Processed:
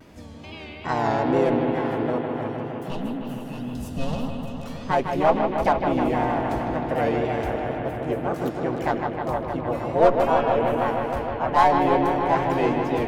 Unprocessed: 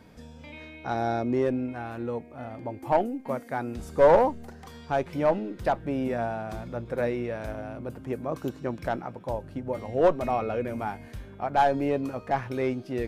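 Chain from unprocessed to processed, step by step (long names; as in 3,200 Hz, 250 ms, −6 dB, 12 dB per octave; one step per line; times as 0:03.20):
pitch-shifted copies added +4 semitones −2 dB
tape wow and flutter 91 cents
gain on a spectral selection 0:02.48–0:04.64, 300–2,500 Hz −21 dB
on a send: bucket-brigade delay 155 ms, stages 4,096, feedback 83%, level −6.5 dB
on the sum: level +2 dB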